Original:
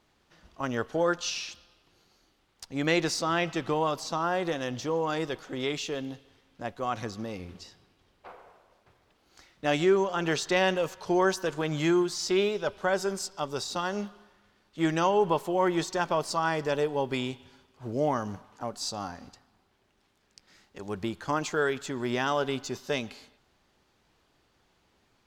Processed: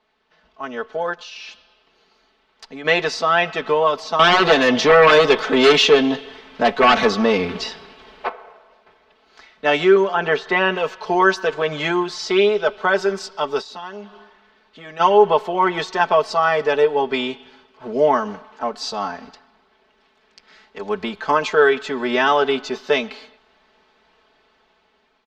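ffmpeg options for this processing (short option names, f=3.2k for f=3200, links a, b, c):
-filter_complex "[0:a]asplit=3[a][b][c];[a]afade=t=out:st=1.13:d=0.02[d];[b]acompressor=threshold=-35dB:ratio=6:attack=3.2:release=140:knee=1:detection=peak,afade=t=in:st=1.13:d=0.02,afade=t=out:st=2.84:d=0.02[e];[c]afade=t=in:st=2.84:d=0.02[f];[d][e][f]amix=inputs=3:normalize=0,asettb=1/sr,asplit=3[g][h][i];[g]atrim=end=4.194[j];[h]atrim=start=4.19:end=8.29,asetpts=PTS-STARTPTS,afade=t=in:d=0.004:c=qsin,afade=t=out:st=4.096:d=0.004:c=qsin,aeval=exprs='0.133*sin(PI/2*3.16*val(0)/0.133)':c=same[k];[i]atrim=start=8.286[l];[j][k]acrossfade=d=0.004:c1=hsin:c2=qsin[m];[m][l]acrossfade=d=0.004:c1=qsin:c2=hsin,asettb=1/sr,asplit=3[n][o][p];[n]atrim=end=9.964[q];[o]atrim=start=9.96:end=10.77,asetpts=PTS-STARTPTS,afade=t=in:d=0.004:c=qsin,afade=t=out:st=0.806:d=0.004:c=qsin,acrossover=split=2600[r][s];[s]acompressor=threshold=-47dB:ratio=4:attack=1:release=60[t];[r][t]amix=inputs=2:normalize=0[u];[p]atrim=start=10.766[v];[q][u]acrossfade=d=0.004:c1=hsin:c2=qsin[w];[w][v]acrossfade=d=0.004:c1=qsin:c2=hsin,asplit=3[x][y][z];[x]afade=t=out:st=13.6:d=0.02[aa];[y]acompressor=threshold=-45dB:ratio=2.5:attack=3.2:release=140:knee=1:detection=peak,afade=t=in:st=13.6:d=0.02,afade=t=out:st=14.99:d=0.02[ab];[z]afade=t=in:st=14.99:d=0.02[ac];[aa][ab][ac]amix=inputs=3:normalize=0,acrossover=split=320 4600:gain=0.251 1 0.0631[ad][ae][af];[ad][ae][af]amix=inputs=3:normalize=0,aecho=1:1:4.6:0.83,dynaudnorm=f=680:g=5:m=10dB,volume=1dB"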